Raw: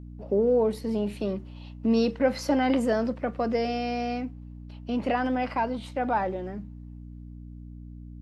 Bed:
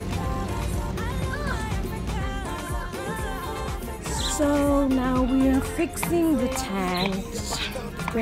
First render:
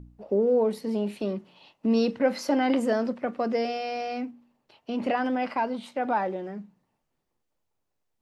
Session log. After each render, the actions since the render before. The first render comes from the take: de-hum 60 Hz, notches 5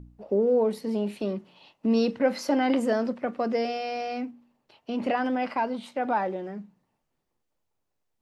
no audible change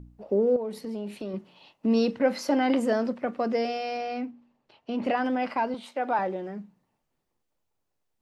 0.56–1.34 s: compression 2.5:1, threshold -33 dBFS; 3.97–5.05 s: distance through air 70 m; 5.74–6.19 s: high-pass 300 Hz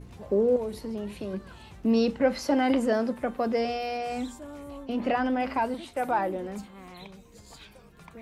add bed -20.5 dB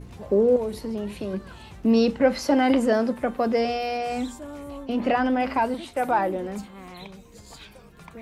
trim +4 dB

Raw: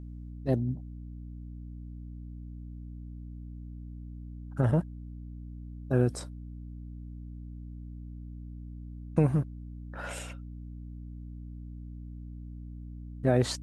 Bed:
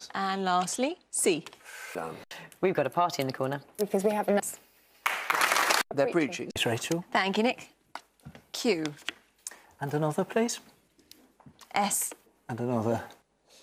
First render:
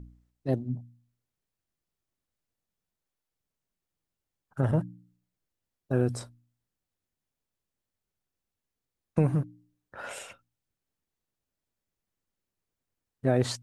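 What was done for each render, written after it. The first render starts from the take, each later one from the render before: de-hum 60 Hz, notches 5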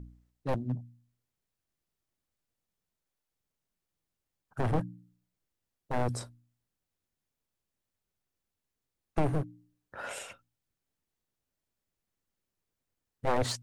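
one-sided wavefolder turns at -27 dBFS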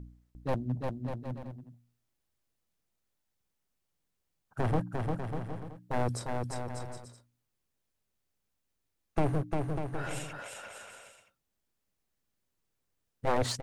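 bouncing-ball echo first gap 350 ms, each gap 0.7×, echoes 5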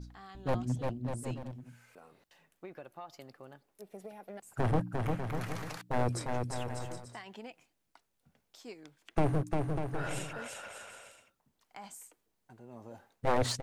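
add bed -21 dB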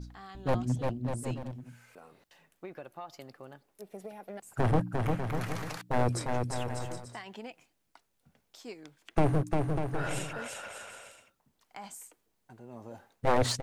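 trim +3 dB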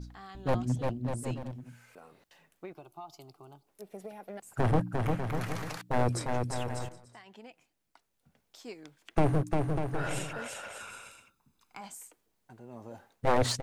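2.73–3.67 s: static phaser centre 350 Hz, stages 8; 6.89–8.71 s: fade in, from -12.5 dB; 10.80–11.81 s: comb 0.8 ms, depth 59%

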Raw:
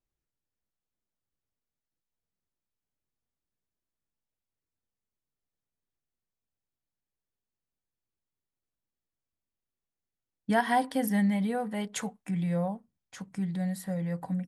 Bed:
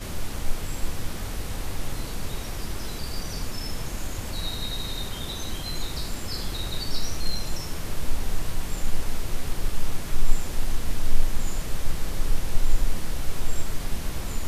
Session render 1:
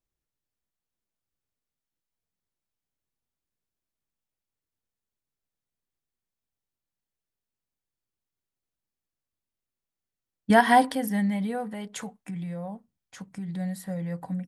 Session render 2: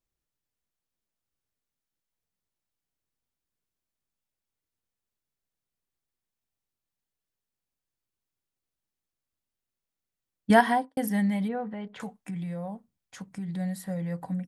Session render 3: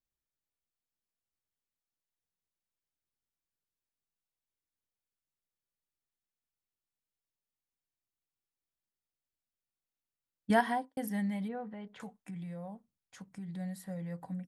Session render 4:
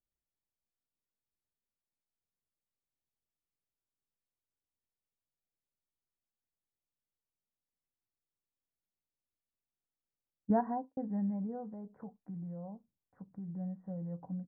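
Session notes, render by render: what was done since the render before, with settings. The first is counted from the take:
10.50–10.95 s: gain +7.5 dB; 11.63–13.49 s: compression, threshold -31 dBFS
10.53–10.97 s: studio fade out; 11.48–12.00 s: distance through air 350 m
trim -8 dB
Gaussian low-pass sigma 8.8 samples

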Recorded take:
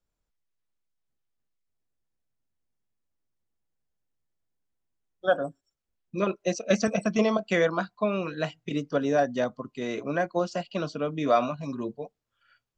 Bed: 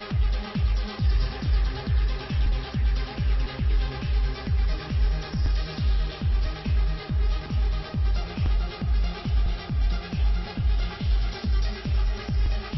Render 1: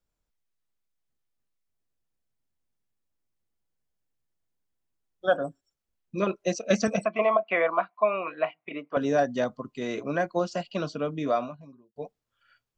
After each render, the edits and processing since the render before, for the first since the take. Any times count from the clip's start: 7.05–8.97 s: cabinet simulation 440–2500 Hz, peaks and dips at 450 Hz -4 dB, 670 Hz +7 dB, 1.1 kHz +8 dB, 1.6 kHz -6 dB, 2.3 kHz +8 dB; 10.96–11.96 s: studio fade out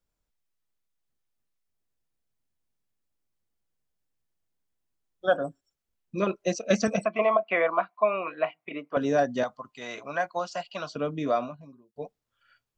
9.43–10.96 s: resonant low shelf 540 Hz -10.5 dB, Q 1.5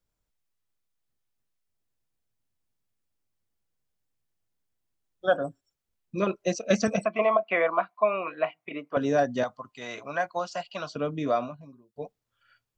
peaking EQ 110 Hz +4.5 dB 0.49 oct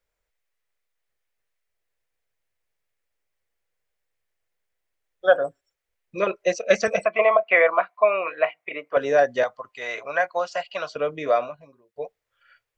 ten-band graphic EQ 125 Hz -6 dB, 250 Hz -10 dB, 500 Hz +9 dB, 2 kHz +10 dB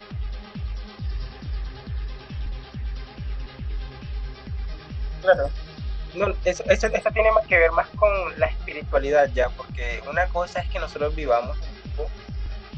add bed -7 dB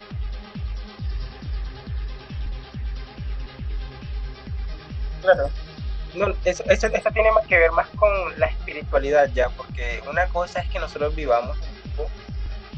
trim +1 dB

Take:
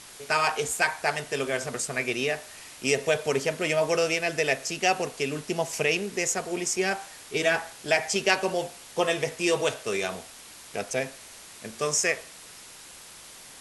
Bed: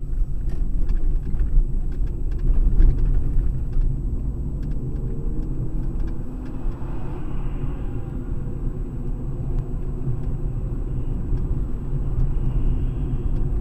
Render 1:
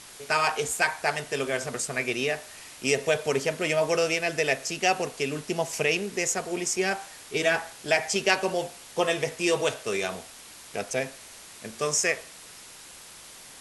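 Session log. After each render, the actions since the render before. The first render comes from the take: no audible change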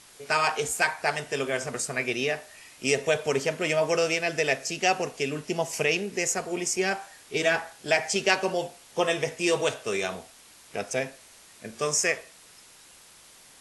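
noise print and reduce 6 dB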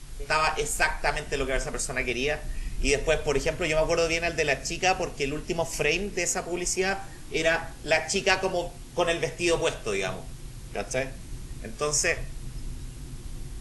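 add bed -15.5 dB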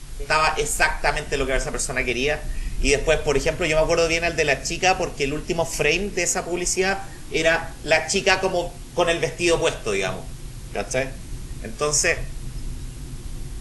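trim +5 dB; peak limiter -3 dBFS, peak gain reduction 1 dB

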